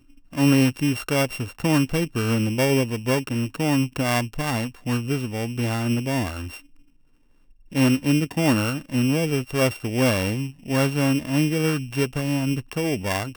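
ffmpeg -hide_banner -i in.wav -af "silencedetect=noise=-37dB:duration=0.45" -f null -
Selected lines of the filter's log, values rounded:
silence_start: 6.60
silence_end: 7.72 | silence_duration: 1.12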